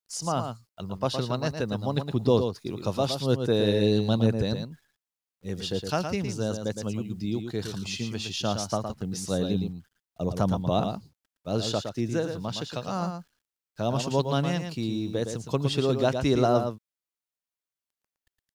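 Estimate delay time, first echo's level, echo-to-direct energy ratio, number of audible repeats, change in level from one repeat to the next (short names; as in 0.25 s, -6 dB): 0.114 s, -7.0 dB, -7.0 dB, 1, no steady repeat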